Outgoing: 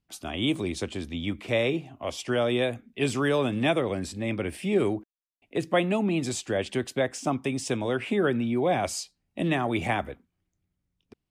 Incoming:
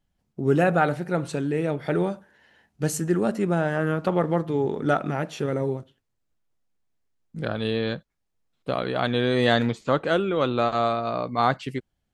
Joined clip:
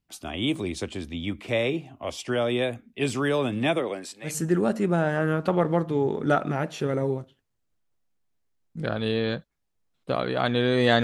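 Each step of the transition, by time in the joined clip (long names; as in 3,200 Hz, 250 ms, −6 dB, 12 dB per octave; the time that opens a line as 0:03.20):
outgoing
0:03.78–0:04.39: high-pass filter 190 Hz → 1,300 Hz
0:04.30: continue with incoming from 0:02.89, crossfade 0.18 s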